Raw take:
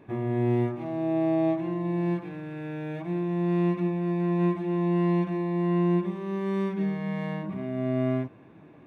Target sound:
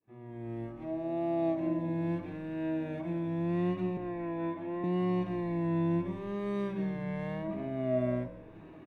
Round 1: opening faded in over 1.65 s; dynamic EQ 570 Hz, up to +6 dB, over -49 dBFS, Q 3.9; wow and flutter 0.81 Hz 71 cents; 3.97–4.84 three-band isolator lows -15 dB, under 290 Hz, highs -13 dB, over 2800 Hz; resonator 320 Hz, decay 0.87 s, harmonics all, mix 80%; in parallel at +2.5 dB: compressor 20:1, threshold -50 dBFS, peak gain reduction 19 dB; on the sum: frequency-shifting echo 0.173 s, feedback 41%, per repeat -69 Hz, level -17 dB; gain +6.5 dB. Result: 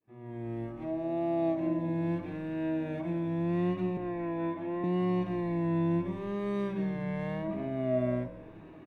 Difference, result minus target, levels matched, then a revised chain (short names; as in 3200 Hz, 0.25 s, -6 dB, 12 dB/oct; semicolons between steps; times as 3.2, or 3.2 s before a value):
compressor: peak gain reduction -8.5 dB
opening faded in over 1.65 s; dynamic EQ 570 Hz, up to +6 dB, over -49 dBFS, Q 3.9; wow and flutter 0.81 Hz 71 cents; 3.97–4.84 three-band isolator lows -15 dB, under 290 Hz, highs -13 dB, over 2800 Hz; resonator 320 Hz, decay 0.87 s, harmonics all, mix 80%; in parallel at +2.5 dB: compressor 20:1, threshold -59 dBFS, peak gain reduction 27.5 dB; on the sum: frequency-shifting echo 0.173 s, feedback 41%, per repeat -69 Hz, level -17 dB; gain +6.5 dB